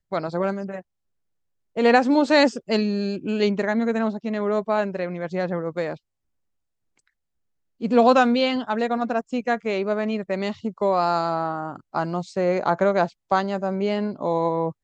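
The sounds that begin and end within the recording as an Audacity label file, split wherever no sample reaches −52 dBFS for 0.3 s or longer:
1.760000	5.980000	sound
6.980000	7.080000	sound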